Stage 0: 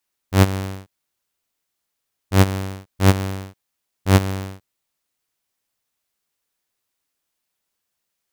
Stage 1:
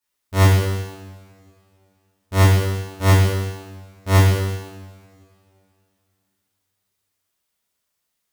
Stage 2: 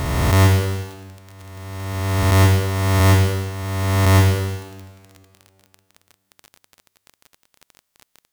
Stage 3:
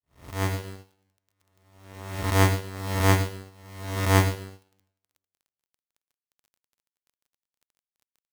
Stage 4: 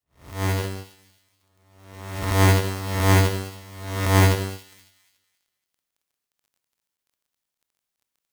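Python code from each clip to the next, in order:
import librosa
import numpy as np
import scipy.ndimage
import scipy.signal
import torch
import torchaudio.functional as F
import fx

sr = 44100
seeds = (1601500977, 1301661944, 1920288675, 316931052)

y1 = fx.rev_double_slope(x, sr, seeds[0], early_s=0.96, late_s=2.8, knee_db=-21, drr_db=-9.5)
y1 = y1 * librosa.db_to_amplitude(-8.0)
y2 = fx.spec_swells(y1, sr, rise_s=2.09)
y2 = fx.dmg_crackle(y2, sr, seeds[1], per_s=22.0, level_db=-26.0)
y2 = y2 * librosa.db_to_amplitude(-1.0)
y3 = fx.fade_in_head(y2, sr, length_s=0.68)
y3 = fx.power_curve(y3, sr, exponent=2.0)
y4 = fx.transient(y3, sr, attack_db=-7, sustain_db=8)
y4 = fx.echo_wet_highpass(y4, sr, ms=277, feedback_pct=31, hz=2800.0, wet_db=-16.0)
y4 = y4 * librosa.db_to_amplitude(4.0)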